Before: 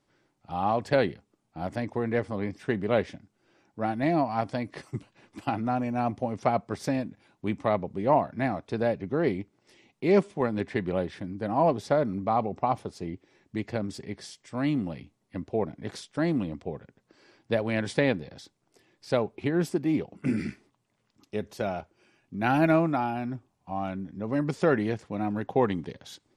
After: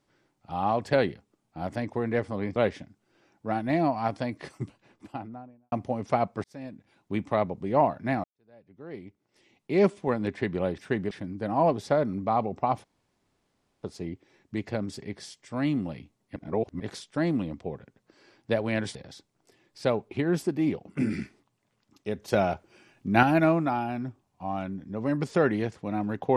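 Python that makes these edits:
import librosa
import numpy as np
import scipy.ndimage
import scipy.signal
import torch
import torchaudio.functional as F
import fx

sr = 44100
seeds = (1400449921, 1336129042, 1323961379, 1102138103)

y = fx.studio_fade_out(x, sr, start_s=4.87, length_s=1.18)
y = fx.edit(y, sr, fx.move(start_s=2.56, length_s=0.33, to_s=11.11),
    fx.fade_in_span(start_s=6.77, length_s=0.7),
    fx.fade_in_span(start_s=8.57, length_s=1.6, curve='qua'),
    fx.insert_room_tone(at_s=12.84, length_s=0.99),
    fx.reverse_span(start_s=15.37, length_s=0.44),
    fx.cut(start_s=17.96, length_s=0.26),
    fx.clip_gain(start_s=21.55, length_s=0.95, db=6.5), tone=tone)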